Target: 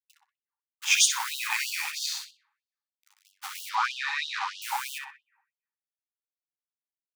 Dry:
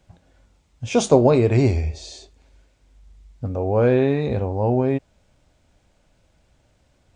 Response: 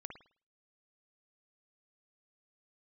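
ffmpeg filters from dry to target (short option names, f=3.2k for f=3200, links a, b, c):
-filter_complex "[0:a]asplit=2[a][b];[b]acontrast=82,volume=-1dB[c];[a][c]amix=inputs=2:normalize=0,alimiter=limit=-7.5dB:level=0:latency=1:release=27,acrusher=bits=6:mode=log:mix=0:aa=0.000001,aeval=exprs='sgn(val(0))*max(abs(val(0))-0.0188,0)':c=same,asettb=1/sr,asplit=3[d][e][f];[d]atrim=end=3.694[g];[e]atrim=start=3.69:end=4.62,asetpts=PTS-STARTPTS,afade=t=in:d=0.004:c=qsin,afade=t=out:st=0.926:d=0.004:c=qsin,highpass=f=280:w=0.5412,highpass=f=280:w=1.3066,equalizer=f=290:t=q:w=4:g=8,equalizer=f=580:t=q:w=4:g=-10,equalizer=f=1.2k:t=q:w=4:g=7,lowpass=f=5.4k:w=0.5412,lowpass=f=5.4k:w=1.3066[h];[f]atrim=start=4.616[i];[g][h]acrossfade=d=0.004:c1=hsin:c2=qsin[j];[j][i]acrossfade=d=0.004:c1=qsin:c2=hsin,asoftclip=type=hard:threshold=-9dB,asplit=2[k][l];[l]adelay=62,lowpass=f=2.8k:p=1,volume=-3.5dB,asplit=2[m][n];[n]adelay=62,lowpass=f=2.8k:p=1,volume=0.45,asplit=2[o][p];[p]adelay=62,lowpass=f=2.8k:p=1,volume=0.45,asplit=2[q][r];[r]adelay=62,lowpass=f=2.8k:p=1,volume=0.45,asplit=2[s][t];[t]adelay=62,lowpass=f=2.8k:p=1,volume=0.45,asplit=2[u][v];[v]adelay=62,lowpass=f=2.8k:p=1,volume=0.45[w];[k][m][o][q][s][u][w]amix=inputs=7:normalize=0,asplit=2[x][y];[1:a]atrim=start_sample=2205,asetrate=23814,aresample=44100,adelay=13[z];[y][z]afir=irnorm=-1:irlink=0,volume=-9.5dB[aa];[x][aa]amix=inputs=2:normalize=0,afftfilt=real='re*gte(b*sr/1024,770*pow(2800/770,0.5+0.5*sin(2*PI*3.1*pts/sr)))':imag='im*gte(b*sr/1024,770*pow(2800/770,0.5+0.5*sin(2*PI*3.1*pts/sr)))':win_size=1024:overlap=0.75,volume=1.5dB"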